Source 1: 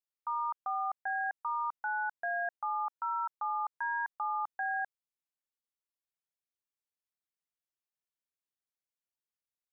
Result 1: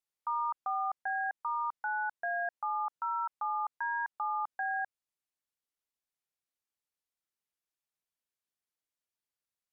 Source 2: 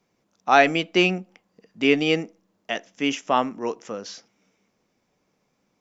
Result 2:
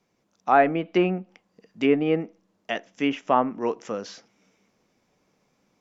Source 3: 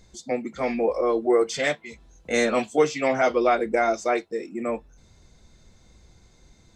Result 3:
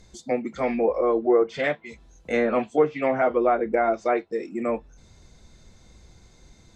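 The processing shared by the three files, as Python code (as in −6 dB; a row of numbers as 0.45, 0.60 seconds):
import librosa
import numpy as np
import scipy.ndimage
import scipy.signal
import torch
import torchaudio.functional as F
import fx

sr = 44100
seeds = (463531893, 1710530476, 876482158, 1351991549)

p1 = fx.env_lowpass_down(x, sr, base_hz=1500.0, full_db=-16.5)
p2 = fx.dynamic_eq(p1, sr, hz=5700.0, q=0.74, threshold_db=-48.0, ratio=4.0, max_db=-7)
p3 = fx.rider(p2, sr, range_db=3, speed_s=2.0)
p4 = p2 + (p3 * 10.0 ** (3.0 / 20.0))
y = p4 * 10.0 ** (-7.0 / 20.0)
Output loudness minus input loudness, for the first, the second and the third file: +0.5, −2.5, 0.0 LU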